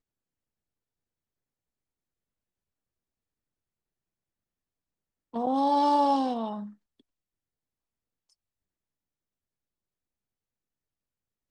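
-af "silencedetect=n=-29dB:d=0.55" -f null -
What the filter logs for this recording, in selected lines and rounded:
silence_start: 0.00
silence_end: 5.36 | silence_duration: 5.36
silence_start: 6.57
silence_end: 11.51 | silence_duration: 4.94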